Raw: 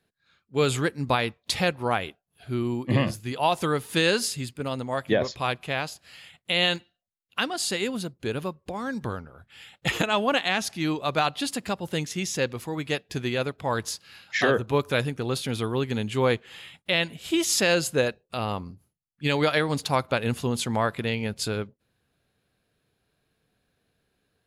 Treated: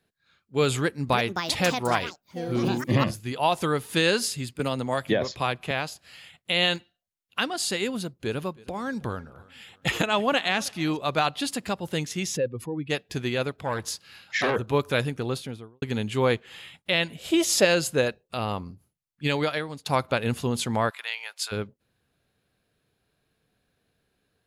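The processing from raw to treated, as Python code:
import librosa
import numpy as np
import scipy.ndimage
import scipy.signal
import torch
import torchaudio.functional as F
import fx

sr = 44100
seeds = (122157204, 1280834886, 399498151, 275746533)

y = fx.echo_pitch(x, sr, ms=362, semitones=6, count=2, db_per_echo=-6.0, at=(0.76, 3.47))
y = fx.band_squash(y, sr, depth_pct=70, at=(4.59, 5.71))
y = fx.echo_feedback(y, sr, ms=318, feedback_pct=38, wet_db=-23.0, at=(7.92, 10.97))
y = fx.spec_expand(y, sr, power=1.9, at=(12.36, 12.89), fade=0.02)
y = fx.transformer_sat(y, sr, knee_hz=1200.0, at=(13.63, 14.56))
y = fx.studio_fade_out(y, sr, start_s=15.18, length_s=0.64)
y = fx.peak_eq(y, sr, hz=560.0, db=10.5, octaves=0.77, at=(17.17, 17.65))
y = fx.highpass(y, sr, hz=880.0, slope=24, at=(20.89, 21.51), fade=0.02)
y = fx.edit(y, sr, fx.fade_out_to(start_s=19.24, length_s=0.62, floor_db=-21.0), tone=tone)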